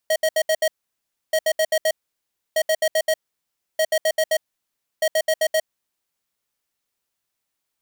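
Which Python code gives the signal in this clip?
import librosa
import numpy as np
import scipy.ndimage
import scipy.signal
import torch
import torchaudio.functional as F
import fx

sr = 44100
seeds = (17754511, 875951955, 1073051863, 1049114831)

y = fx.beep_pattern(sr, wave='square', hz=633.0, on_s=0.06, off_s=0.07, beeps=5, pause_s=0.65, groups=5, level_db=-18.5)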